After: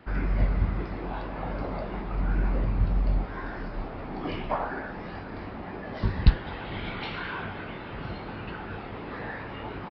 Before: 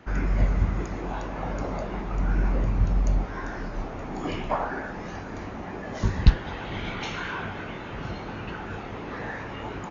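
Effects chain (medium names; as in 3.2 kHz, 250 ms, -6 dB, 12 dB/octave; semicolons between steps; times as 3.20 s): resampled via 11.025 kHz; trim -2 dB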